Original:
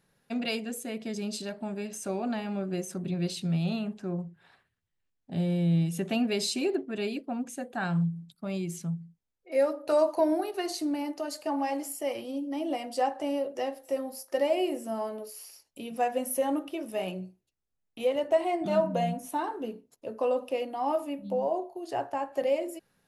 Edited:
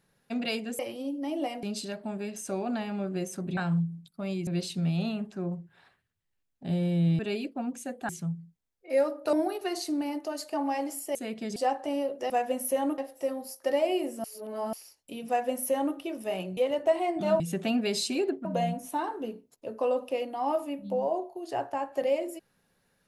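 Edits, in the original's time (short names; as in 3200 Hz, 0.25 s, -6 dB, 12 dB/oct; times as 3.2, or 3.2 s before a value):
0.79–1.2 swap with 12.08–12.92
5.86–6.91 move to 18.85
7.81–8.71 move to 3.14
9.95–10.26 cut
14.92–15.41 reverse
15.96–16.64 copy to 13.66
17.25–18.02 cut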